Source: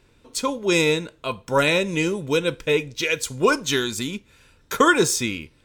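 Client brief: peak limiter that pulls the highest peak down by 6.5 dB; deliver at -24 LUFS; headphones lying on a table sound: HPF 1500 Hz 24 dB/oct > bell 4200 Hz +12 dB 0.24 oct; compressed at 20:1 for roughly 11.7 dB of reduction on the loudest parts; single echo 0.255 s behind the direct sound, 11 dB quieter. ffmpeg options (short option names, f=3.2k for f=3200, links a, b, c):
-af "acompressor=threshold=-23dB:ratio=20,alimiter=limit=-19dB:level=0:latency=1,highpass=f=1.5k:w=0.5412,highpass=f=1.5k:w=1.3066,equalizer=f=4.2k:t=o:w=0.24:g=12,aecho=1:1:255:0.282,volume=7.5dB"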